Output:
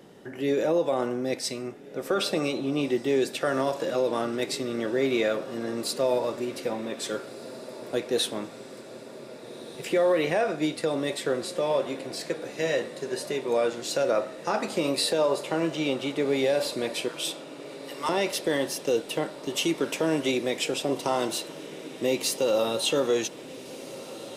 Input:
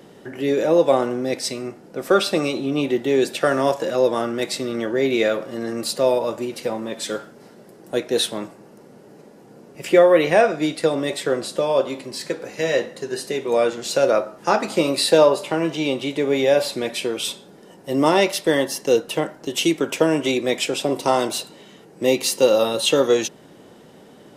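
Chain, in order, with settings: 17.08–18.09 s: steep high-pass 920 Hz; peak limiter -10.5 dBFS, peak gain reduction 8 dB; echo that smears into a reverb 1660 ms, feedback 70%, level -16 dB; trim -5 dB

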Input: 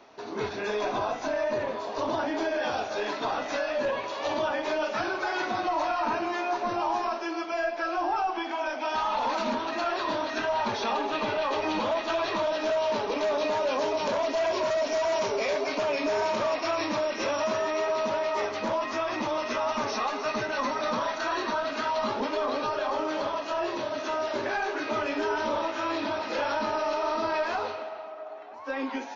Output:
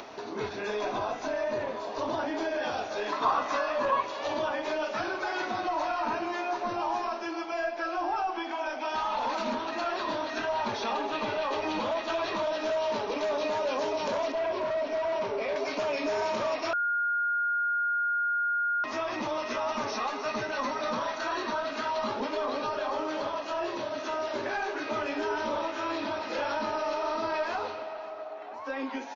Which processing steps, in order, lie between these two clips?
3.12–4.03 s: peaking EQ 1.1 kHz +15 dB 0.39 oct; upward compressor, threshold -31 dBFS; 14.32–15.56 s: distance through air 230 m; delay 544 ms -18 dB; 16.73–18.84 s: bleep 1.42 kHz -22.5 dBFS; trim -2.5 dB

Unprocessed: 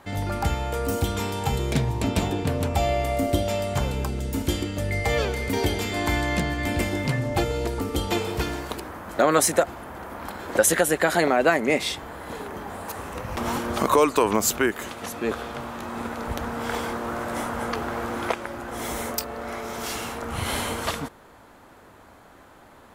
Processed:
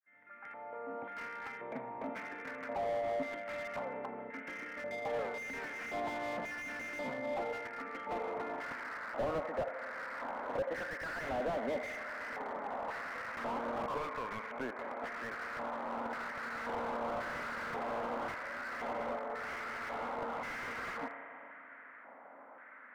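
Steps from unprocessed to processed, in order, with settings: fade-in on the opening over 2.82 s; bass shelf 330 Hz +6 dB; compression 2:1, threshold -26 dBFS, peak gain reduction 8 dB; LFO band-pass square 0.93 Hz 810–1700 Hz; saturation -23.5 dBFS, distortion -19 dB; cabinet simulation 210–2300 Hz, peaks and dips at 250 Hz +9 dB, 360 Hz -6 dB, 550 Hz +5 dB, 790 Hz -4 dB, 1.4 kHz +4 dB, 2.1 kHz +10 dB; feedback echo behind a band-pass 84 ms, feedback 51%, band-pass 860 Hz, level -12 dB; spring tank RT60 3.8 s, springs 36 ms, chirp 20 ms, DRR 12.5 dB; slew-rate limiter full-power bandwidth 16 Hz

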